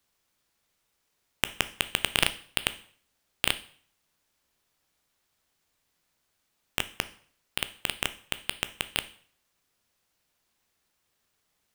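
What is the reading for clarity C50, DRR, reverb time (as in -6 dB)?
16.5 dB, 12.0 dB, 0.50 s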